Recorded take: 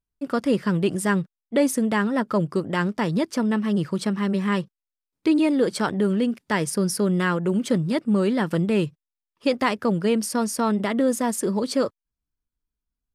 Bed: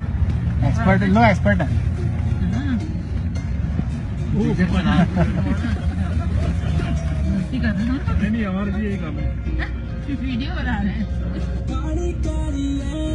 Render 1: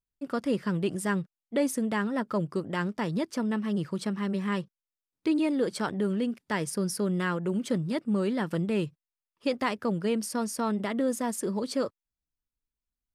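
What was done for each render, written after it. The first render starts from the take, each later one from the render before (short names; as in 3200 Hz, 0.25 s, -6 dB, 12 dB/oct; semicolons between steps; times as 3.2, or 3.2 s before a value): gain -6.5 dB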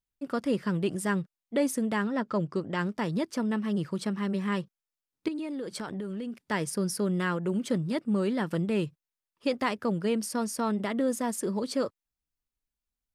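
2.06–2.79 LPF 7500 Hz 24 dB/oct; 5.28–6.37 compressor, threshold -32 dBFS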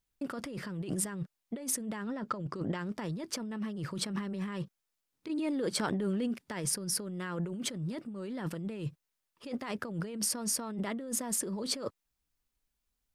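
negative-ratio compressor -36 dBFS, ratio -1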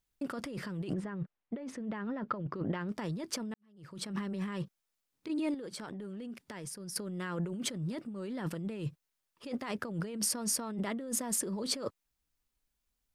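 0.92–2.87 LPF 1900 Hz -> 3300 Hz; 3.54–4.21 fade in quadratic; 5.54–6.96 compressor, threshold -40 dBFS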